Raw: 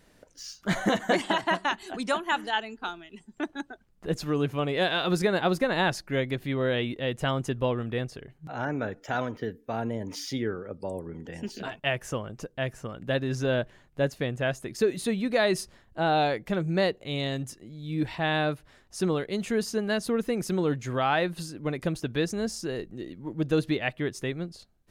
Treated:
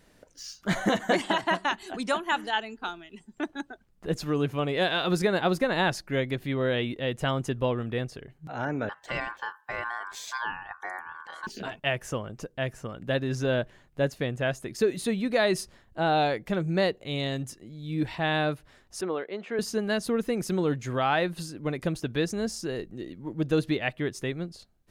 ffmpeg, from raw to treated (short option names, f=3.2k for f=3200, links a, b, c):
-filter_complex "[0:a]asettb=1/sr,asplit=3[a][b][c];[a]atrim=end=8.894[d];[b]atrim=start=8.89:end=11.47,asetpts=PTS-STARTPTS,afade=t=in:d=0.004:c=qsin,afade=t=out:st=2.576:d=0.004:c=qsin,aeval=exprs='val(0)*sin(2*PI*1300*n/s)':c=same[e];[c]atrim=start=11.466[f];[d][e]acrossfade=d=0.004:c1=hsin:c2=qsin[g];[g][f]acrossfade=d=0.004:c1=qsin:c2=hsin,asettb=1/sr,asplit=3[h][i][j];[h]atrim=end=19.014[k];[i]atrim=start=19.01:end=19.59,asetpts=PTS-STARTPTS,afade=t=in:d=0.004:c=qsin,afade=t=out:st=0.576:d=0.004:c=qsin,highpass=390,lowpass=2.2k[l];[j]atrim=start=19.586[m];[k][l]acrossfade=d=0.004:c1=hsin:c2=qsin[n];[n][m]acrossfade=d=0.004:c1=qsin:c2=hsin"